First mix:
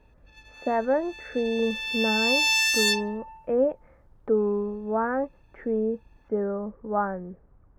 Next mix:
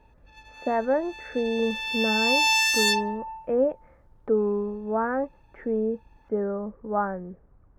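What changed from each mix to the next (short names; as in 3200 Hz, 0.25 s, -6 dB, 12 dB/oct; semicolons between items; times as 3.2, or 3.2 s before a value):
background: add bell 770 Hz +12 dB 0.62 oct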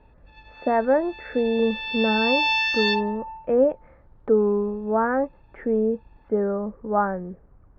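speech +4.0 dB; master: add steep low-pass 4400 Hz 36 dB/oct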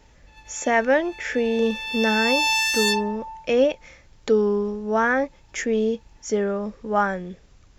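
speech: remove LPF 1300 Hz 24 dB/oct; master: remove steep low-pass 4400 Hz 36 dB/oct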